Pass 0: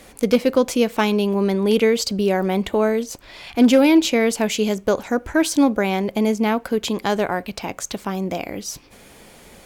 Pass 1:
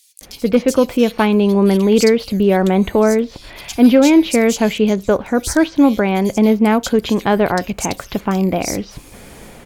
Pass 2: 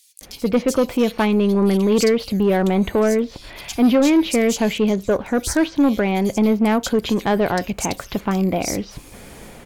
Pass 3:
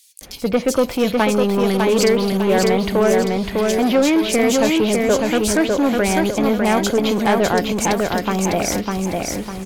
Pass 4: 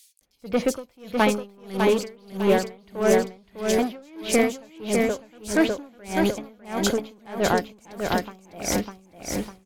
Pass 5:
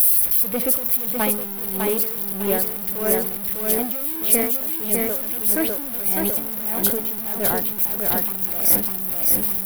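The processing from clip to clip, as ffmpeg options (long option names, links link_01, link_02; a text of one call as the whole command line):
ffmpeg -i in.wav -filter_complex "[0:a]lowshelf=frequency=180:gain=6.5,dynaudnorm=framelen=210:gausssize=3:maxgain=6.5dB,acrossover=split=3600[link_01][link_02];[link_01]adelay=210[link_03];[link_03][link_02]amix=inputs=2:normalize=0" out.wav
ffmpeg -i in.wav -af "acontrast=62,volume=-8dB" out.wav
ffmpeg -i in.wav -filter_complex "[0:a]aecho=1:1:602|1204|1806|2408|3010:0.668|0.254|0.0965|0.0367|0.0139,acrossover=split=390|1500[link_01][link_02][link_03];[link_01]asoftclip=type=tanh:threshold=-21.5dB[link_04];[link_04][link_02][link_03]amix=inputs=3:normalize=0,volume=2.5dB" out.wav
ffmpeg -i in.wav -af "aeval=exprs='val(0)*pow(10,-32*(0.5-0.5*cos(2*PI*1.6*n/s))/20)':channel_layout=same,volume=-1.5dB" out.wav
ffmpeg -i in.wav -af "aeval=exprs='val(0)+0.5*0.0473*sgn(val(0))':channel_layout=same,aexciter=amount=15.4:drive=7.2:freq=10000,volume=-5dB" out.wav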